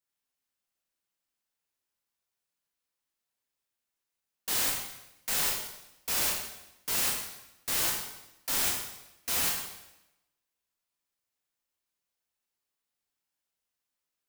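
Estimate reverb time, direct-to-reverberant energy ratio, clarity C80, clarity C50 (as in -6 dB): 0.90 s, -2.5 dB, 5.5 dB, 2.5 dB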